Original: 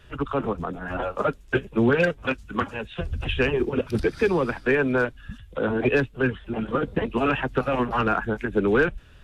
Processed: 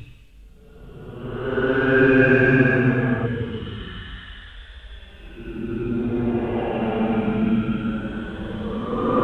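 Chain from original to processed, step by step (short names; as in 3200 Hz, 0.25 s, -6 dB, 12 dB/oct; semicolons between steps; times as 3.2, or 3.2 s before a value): Paulstretch 14×, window 0.10 s, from 6.08; spectral repair 2.23–3.23, 540–1300 Hz before; gain +5 dB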